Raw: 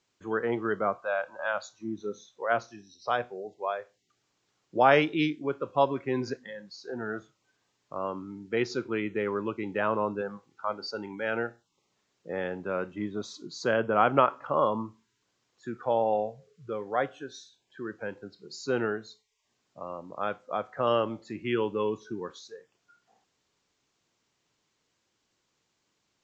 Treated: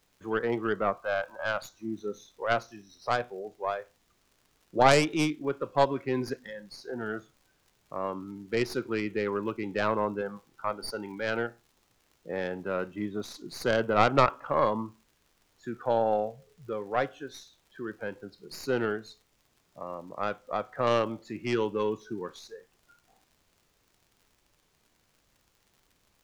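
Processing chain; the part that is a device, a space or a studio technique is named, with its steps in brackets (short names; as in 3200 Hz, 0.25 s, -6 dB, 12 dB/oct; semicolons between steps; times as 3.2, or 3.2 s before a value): record under a worn stylus (tracing distortion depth 0.2 ms; crackle 77/s -50 dBFS; pink noise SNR 40 dB)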